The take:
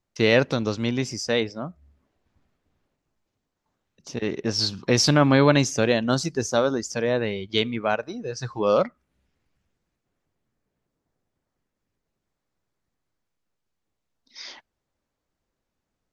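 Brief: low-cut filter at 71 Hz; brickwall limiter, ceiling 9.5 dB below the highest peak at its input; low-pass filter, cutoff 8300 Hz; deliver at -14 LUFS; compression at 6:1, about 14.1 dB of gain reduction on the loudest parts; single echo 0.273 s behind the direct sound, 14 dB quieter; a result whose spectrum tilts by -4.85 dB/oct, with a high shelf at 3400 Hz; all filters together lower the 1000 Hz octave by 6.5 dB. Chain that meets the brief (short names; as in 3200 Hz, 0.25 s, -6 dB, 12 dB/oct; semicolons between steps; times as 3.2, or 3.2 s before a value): HPF 71 Hz; LPF 8300 Hz; bell 1000 Hz -8.5 dB; high shelf 3400 Hz -5.5 dB; compressor 6:1, threshold -30 dBFS; limiter -26 dBFS; echo 0.273 s -14 dB; gain +23.5 dB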